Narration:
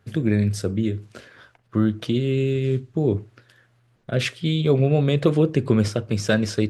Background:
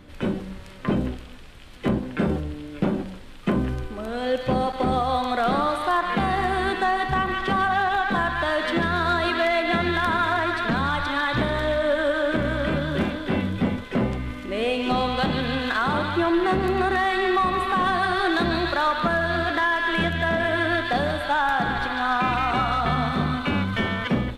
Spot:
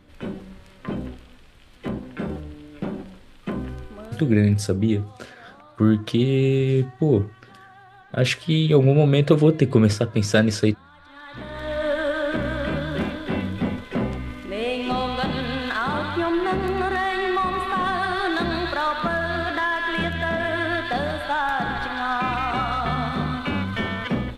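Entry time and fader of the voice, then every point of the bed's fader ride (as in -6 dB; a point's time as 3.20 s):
4.05 s, +2.5 dB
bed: 4.03 s -6 dB
4.39 s -26.5 dB
10.92 s -26.5 dB
11.83 s -1.5 dB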